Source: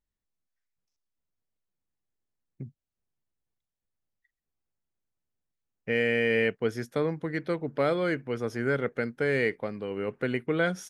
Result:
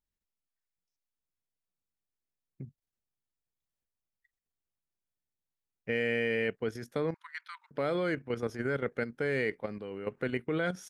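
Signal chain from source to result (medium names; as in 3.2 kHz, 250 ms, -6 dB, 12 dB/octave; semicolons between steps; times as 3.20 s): level held to a coarse grid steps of 10 dB; 7.14–7.71 s: rippled Chebyshev high-pass 930 Hz, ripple 3 dB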